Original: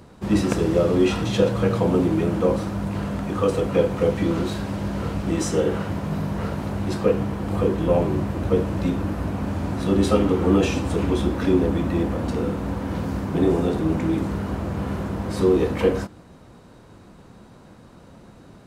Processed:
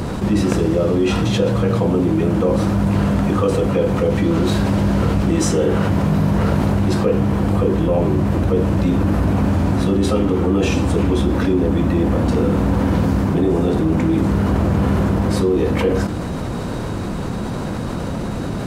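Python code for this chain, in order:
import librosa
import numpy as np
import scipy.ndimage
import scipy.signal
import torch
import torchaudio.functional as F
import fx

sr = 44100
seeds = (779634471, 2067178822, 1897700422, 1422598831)

y = fx.rider(x, sr, range_db=10, speed_s=0.5)
y = fx.low_shelf(y, sr, hz=320.0, db=3.5)
y = fx.env_flatten(y, sr, amount_pct=70)
y = F.gain(torch.from_numpy(y), -1.0).numpy()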